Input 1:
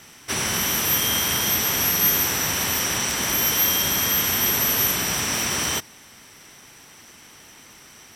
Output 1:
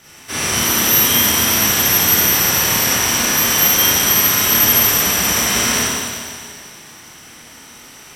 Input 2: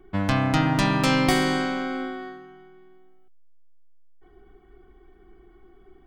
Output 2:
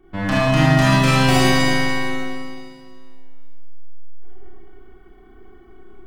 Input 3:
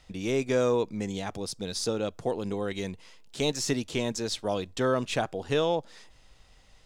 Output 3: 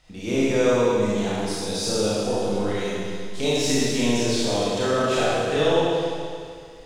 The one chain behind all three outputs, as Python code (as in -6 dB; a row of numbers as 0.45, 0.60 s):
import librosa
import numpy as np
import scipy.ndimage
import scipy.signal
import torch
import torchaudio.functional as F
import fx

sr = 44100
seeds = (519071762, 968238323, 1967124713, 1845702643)

y = fx.rev_schroeder(x, sr, rt60_s=2.2, comb_ms=26, drr_db=-9.0)
y = y * librosa.db_to_amplitude(-2.0)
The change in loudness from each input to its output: +7.5, +6.0, +7.0 LU